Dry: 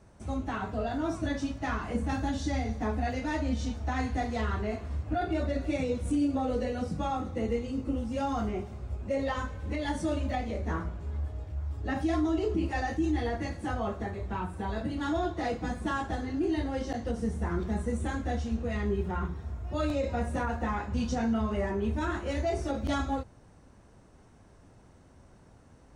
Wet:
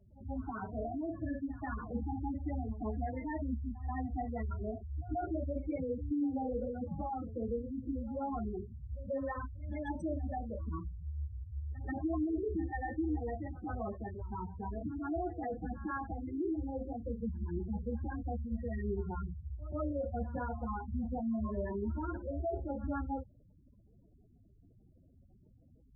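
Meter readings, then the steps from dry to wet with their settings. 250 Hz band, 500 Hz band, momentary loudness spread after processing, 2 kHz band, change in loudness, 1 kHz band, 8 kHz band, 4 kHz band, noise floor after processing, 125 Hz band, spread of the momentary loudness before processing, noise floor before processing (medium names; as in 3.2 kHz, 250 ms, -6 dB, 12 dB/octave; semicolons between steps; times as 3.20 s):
-6.0 dB, -6.5 dB, 6 LU, -11.5 dB, -6.5 dB, -7.0 dB, under -30 dB, under -30 dB, -63 dBFS, -6.0 dB, 6 LU, -57 dBFS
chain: spectral gate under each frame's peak -10 dB strong; pre-echo 134 ms -17.5 dB; trim -5.5 dB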